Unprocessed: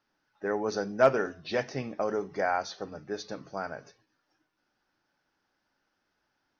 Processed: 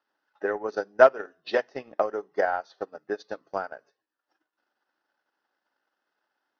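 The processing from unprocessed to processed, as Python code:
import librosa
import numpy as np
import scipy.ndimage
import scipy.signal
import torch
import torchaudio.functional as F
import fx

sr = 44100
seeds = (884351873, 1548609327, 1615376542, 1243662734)

y = scipy.signal.sosfilt(scipy.signal.butter(2, 400.0, 'highpass', fs=sr, output='sos'), x)
y = fx.notch(y, sr, hz=2300.0, q=7.0)
y = fx.transient(y, sr, attack_db=10, sustain_db=-11)
y = fx.air_absorb(y, sr, metres=150.0)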